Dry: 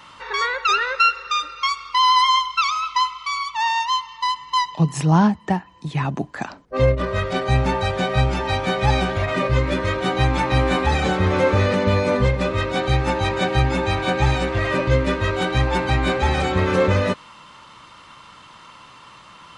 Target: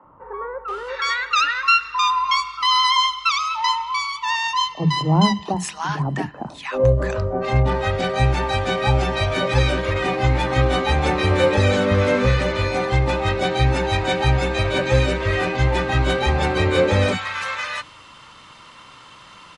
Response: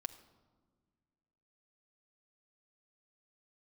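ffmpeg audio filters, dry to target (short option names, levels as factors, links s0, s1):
-filter_complex "[0:a]acrossover=split=210|990[s0][s1][s2];[s0]adelay=40[s3];[s2]adelay=680[s4];[s3][s1][s4]amix=inputs=3:normalize=0,asplit=2[s5][s6];[1:a]atrim=start_sample=2205[s7];[s6][s7]afir=irnorm=-1:irlink=0,volume=0.335[s8];[s5][s8]amix=inputs=2:normalize=0"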